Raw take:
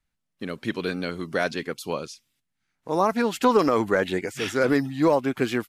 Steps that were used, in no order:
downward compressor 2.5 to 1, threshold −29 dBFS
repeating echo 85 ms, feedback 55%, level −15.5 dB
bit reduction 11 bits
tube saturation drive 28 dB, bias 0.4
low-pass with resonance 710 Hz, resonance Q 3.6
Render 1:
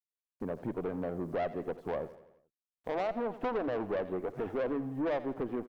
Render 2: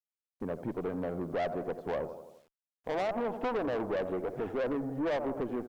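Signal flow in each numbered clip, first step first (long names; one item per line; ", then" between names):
low-pass with resonance, then bit reduction, then downward compressor, then tube saturation, then repeating echo
repeating echo, then downward compressor, then low-pass with resonance, then bit reduction, then tube saturation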